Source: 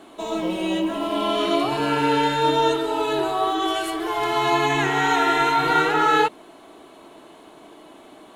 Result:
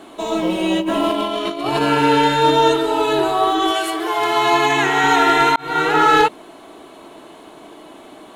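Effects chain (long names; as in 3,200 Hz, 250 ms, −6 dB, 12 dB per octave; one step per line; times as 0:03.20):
0:00.80–0:01.81: compressor whose output falls as the input rises −25 dBFS, ratio −0.5
0:03.71–0:05.04: high-pass filter 290 Hz 6 dB per octave
0:05.56–0:05.97: fade in
gain into a clipping stage and back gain 11.5 dB
level +5.5 dB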